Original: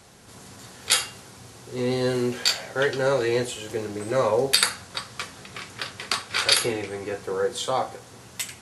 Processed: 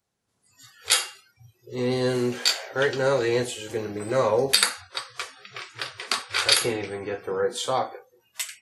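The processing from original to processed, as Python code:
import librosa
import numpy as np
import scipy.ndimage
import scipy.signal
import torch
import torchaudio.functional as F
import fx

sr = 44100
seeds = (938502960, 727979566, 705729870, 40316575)

y = fx.noise_reduce_blind(x, sr, reduce_db=29)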